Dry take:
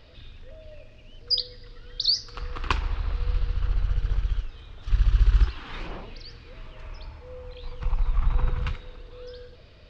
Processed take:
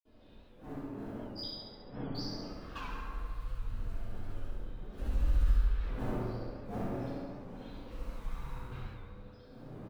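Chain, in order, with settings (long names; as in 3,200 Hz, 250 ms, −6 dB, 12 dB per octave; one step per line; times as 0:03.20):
wind on the microphone 380 Hz −32 dBFS
0:06.87–0:08.48: high-shelf EQ 2,400 Hz +8.5 dB
in parallel at −4 dB: comparator with hysteresis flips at −14 dBFS
on the sum: flanger 0.39 Hz, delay 2.8 ms, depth 8 ms, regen +7%
floating-point word with a short mantissa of 4 bits
0:01.39–0:02.10: linear-phase brick-wall low-pass 3,500 Hz
repeating echo 70 ms, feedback 56%, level −4.5 dB
convolution reverb RT60 1.9 s, pre-delay 48 ms
wow of a warped record 78 rpm, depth 100 cents
level +3 dB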